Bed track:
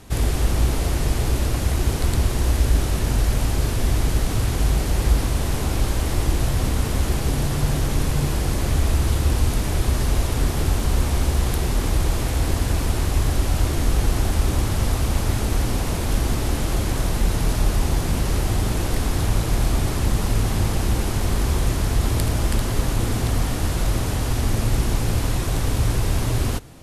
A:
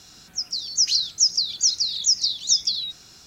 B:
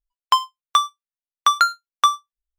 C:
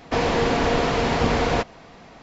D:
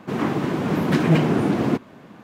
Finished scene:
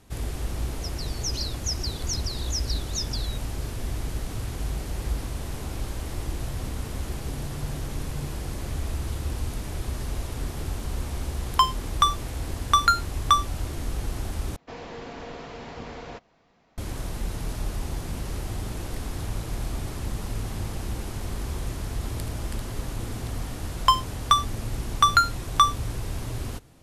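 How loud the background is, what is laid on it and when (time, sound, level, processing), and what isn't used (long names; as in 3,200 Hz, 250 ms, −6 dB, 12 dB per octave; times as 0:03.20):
bed track −10.5 dB
0:00.46: mix in A −12 dB
0:11.27: mix in B −3 dB
0:14.56: overwrite with C −18 dB
0:23.56: mix in B −2 dB
not used: D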